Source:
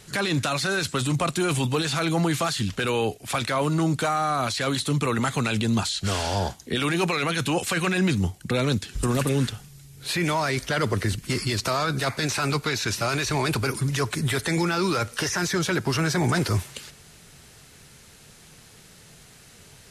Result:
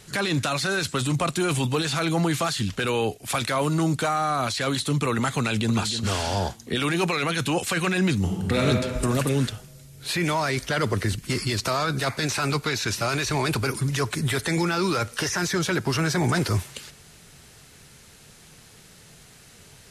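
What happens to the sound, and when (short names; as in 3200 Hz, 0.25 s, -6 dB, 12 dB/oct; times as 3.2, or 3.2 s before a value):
3.23–3.96 high shelf 7600 Hz +5.5 dB
5.38–5.85 echo throw 0.3 s, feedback 30%, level -10 dB
8.19–8.64 reverb throw, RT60 1.9 s, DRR -1.5 dB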